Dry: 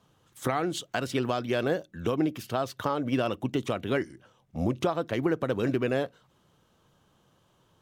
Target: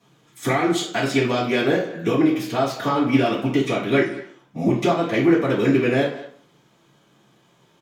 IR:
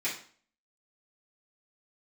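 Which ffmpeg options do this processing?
-filter_complex "[0:a]asplit=2[link_01][link_02];[link_02]adelay=200,highpass=300,lowpass=3400,asoftclip=type=hard:threshold=-22dB,volume=-15dB[link_03];[link_01][link_03]amix=inputs=2:normalize=0[link_04];[1:a]atrim=start_sample=2205[link_05];[link_04][link_05]afir=irnorm=-1:irlink=0,volume=3.5dB"

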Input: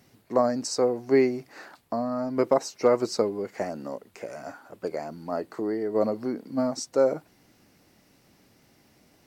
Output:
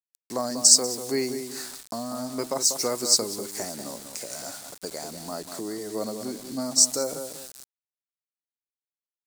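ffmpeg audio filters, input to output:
ffmpeg -i in.wav -filter_complex "[0:a]asplit=2[link_01][link_02];[link_02]acompressor=threshold=-34dB:ratio=12,volume=0dB[link_03];[link_01][link_03]amix=inputs=2:normalize=0,asplit=2[link_04][link_05];[link_05]adelay=192,lowpass=frequency=1600:poles=1,volume=-7.5dB,asplit=2[link_06][link_07];[link_07]adelay=192,lowpass=frequency=1600:poles=1,volume=0.3,asplit=2[link_08][link_09];[link_09]adelay=192,lowpass=frequency=1600:poles=1,volume=0.3,asplit=2[link_10][link_11];[link_11]adelay=192,lowpass=frequency=1600:poles=1,volume=0.3[link_12];[link_04][link_06][link_08][link_10][link_12]amix=inputs=5:normalize=0,aeval=exprs='val(0)*gte(abs(val(0)),0.01)':channel_layout=same,equalizer=frequency=500:width_type=o:width=1:gain=-4,equalizer=frequency=4000:width_type=o:width=1:gain=4,equalizer=frequency=8000:width_type=o:width=1:gain=11,aexciter=amount=3.5:drive=2.3:freq=4000,adynamicequalizer=threshold=0.0355:dfrequency=5400:dqfactor=0.7:tfrequency=5400:tqfactor=0.7:attack=5:release=100:ratio=0.375:range=3:mode=boostabove:tftype=highshelf,volume=-6dB" out.wav

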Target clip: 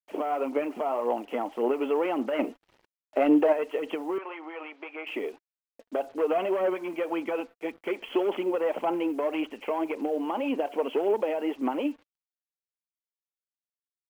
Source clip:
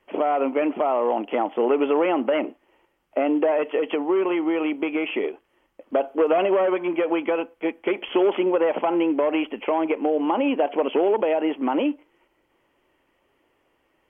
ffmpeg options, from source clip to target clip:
ffmpeg -i in.wav -filter_complex "[0:a]asettb=1/sr,asplit=3[link_01][link_02][link_03];[link_01]atrim=end=2.394[link_04];[link_02]atrim=start=2.39:end=3.53,asetpts=PTS-STARTPTS,afade=type=in:duration=0.004:curve=qsin,afade=type=out:start_time=1.136:duration=0.004:curve=qsin,acontrast=59[link_05];[link_03]atrim=start=3.526[link_06];[link_04][link_05]acrossfade=duration=0.004:curve1=hsin:curve2=qsin[link_07];[link_07][link_06]acrossfade=duration=0.004:curve1=qsin:curve2=hsin,acrusher=bits=7:mix=0:aa=0.5,aphaser=in_gain=1:out_gain=1:delay=4.5:decay=0.38:speed=1.8:type=sinusoidal,asettb=1/sr,asplit=3[link_08][link_09][link_10];[link_08]atrim=end=4.184[link_11];[link_09]atrim=start=4.18:end=5.07,asetpts=PTS-STARTPTS,afade=type=in:duration=0.004:curve=qsin,afade=type=out:start_time=0.886:duration=0.004:curve=qsin,highpass=760,lowpass=2500[link_12];[link_10]atrim=start=5.066[link_13];[link_11][link_12]acrossfade=duration=0.004:curve1=hsin:curve2=qsin[link_14];[link_14][link_13]acrossfade=duration=0.004:curve1=qsin:curve2=hsin,volume=-7.5dB" out.wav

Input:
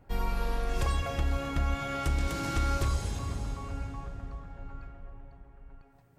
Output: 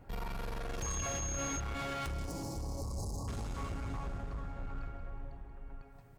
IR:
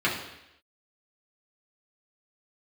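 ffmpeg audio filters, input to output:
-filter_complex "[0:a]alimiter=level_in=5dB:limit=-24dB:level=0:latency=1:release=59,volume=-5dB,asoftclip=type=hard:threshold=-38dB,asettb=1/sr,asplit=3[link_01][link_02][link_03];[link_01]atrim=end=2.104[link_04];[link_02]atrim=start=2.1:end=3.28,asetpts=PTS-STARTPTS,afade=type=in:duration=0.004:curve=qsin,afade=type=out:start_time=1.176:duration=0.004:curve=qsin,asuperstop=centerf=2200:order=12:qfactor=0.63[link_05];[link_03]atrim=start=3.276[link_06];[link_04][link_05]acrossfade=duration=0.004:curve1=hsin:curve2=qsin[link_07];[link_07][link_06]acrossfade=duration=0.004:curve1=qsin:curve2=hsin,aecho=1:1:183|366|549|732|915|1098:0.266|0.138|0.0719|0.0374|0.0195|0.0101,asettb=1/sr,asplit=3[link_08][link_09][link_10];[link_08]atrim=end=0.824[link_11];[link_09]atrim=start=0.82:end=1.6,asetpts=PTS-STARTPTS,afade=type=in:duration=0.004:curve=qsin,afade=type=out:start_time=0.776:duration=0.004:curve=qsin,aeval=exprs='val(0)+0.00891*sin(2*PI*6500*n/s)':channel_layout=same[link_12];[link_10]atrim=start=1.596[link_13];[link_11][link_12]acrossfade=duration=0.004:curve1=hsin:curve2=qsin[link_14];[link_14][link_13]acrossfade=duration=0.004:curve1=qsin:curve2=hsin,volume=2.5dB"

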